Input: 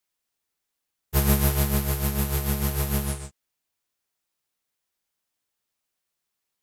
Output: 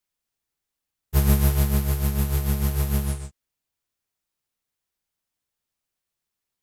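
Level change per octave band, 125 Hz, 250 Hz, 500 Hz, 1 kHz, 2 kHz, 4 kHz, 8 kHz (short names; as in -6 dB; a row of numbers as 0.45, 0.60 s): +3.5, +0.5, -2.0, -2.5, -3.0, -3.0, -3.0 dB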